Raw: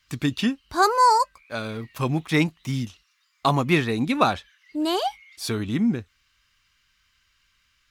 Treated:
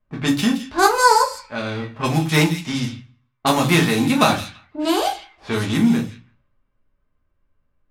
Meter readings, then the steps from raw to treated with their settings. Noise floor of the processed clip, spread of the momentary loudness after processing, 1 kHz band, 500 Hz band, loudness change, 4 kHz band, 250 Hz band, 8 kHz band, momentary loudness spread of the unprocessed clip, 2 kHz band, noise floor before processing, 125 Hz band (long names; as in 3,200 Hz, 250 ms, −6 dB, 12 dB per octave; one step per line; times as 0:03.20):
−70 dBFS, 13 LU, +2.5 dB, +4.5 dB, +4.5 dB, +6.5 dB, +5.5 dB, +9.5 dB, 14 LU, +6.5 dB, −68 dBFS, +4.5 dB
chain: spectral envelope flattened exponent 0.6
delay with a high-pass on its return 168 ms, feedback 31%, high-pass 2,400 Hz, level −10.5 dB
rectangular room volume 120 cubic metres, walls furnished, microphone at 1.4 metres
low-pass that shuts in the quiet parts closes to 560 Hz, open at −17.5 dBFS
level +1 dB